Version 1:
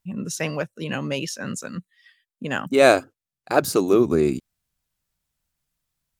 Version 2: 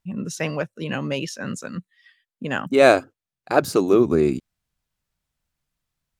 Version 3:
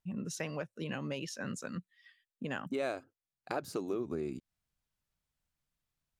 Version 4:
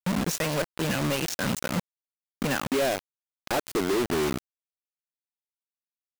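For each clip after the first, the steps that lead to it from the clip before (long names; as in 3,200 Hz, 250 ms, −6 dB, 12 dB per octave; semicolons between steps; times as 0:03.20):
high-shelf EQ 6,100 Hz −8 dB; level +1 dB
downward compressor 4 to 1, threshold −28 dBFS, peak gain reduction 16.5 dB; level −7 dB
log-companded quantiser 2 bits; level +3 dB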